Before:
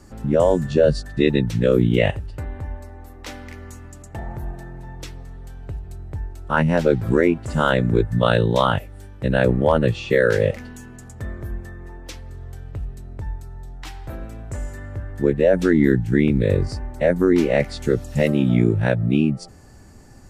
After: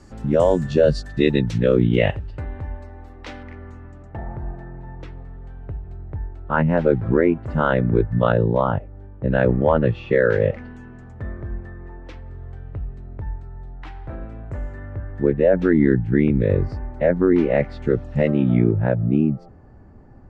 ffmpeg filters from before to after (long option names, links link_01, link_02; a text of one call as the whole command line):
ffmpeg -i in.wav -af "asetnsamples=nb_out_samples=441:pad=0,asendcmd='1.58 lowpass f 3600;3.43 lowpass f 1800;8.32 lowpass f 1000;9.28 lowpass f 2000;18.71 lowpass f 1200',lowpass=7100" out.wav